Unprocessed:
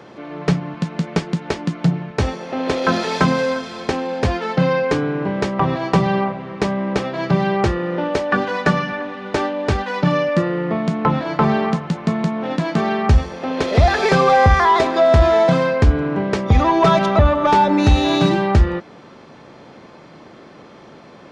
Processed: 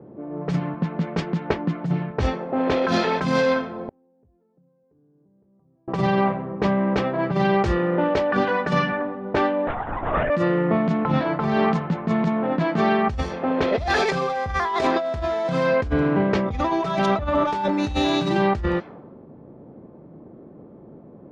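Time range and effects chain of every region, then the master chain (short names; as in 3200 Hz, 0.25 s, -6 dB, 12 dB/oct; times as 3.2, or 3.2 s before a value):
3.74–5.88 compressor 12:1, threshold -21 dBFS + flipped gate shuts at -19 dBFS, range -34 dB
9.67–10.3 HPF 690 Hz + LPC vocoder at 8 kHz whisper
whole clip: low-pass opened by the level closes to 370 Hz, open at -11.5 dBFS; negative-ratio compressor -19 dBFS, ratio -1; gain -2 dB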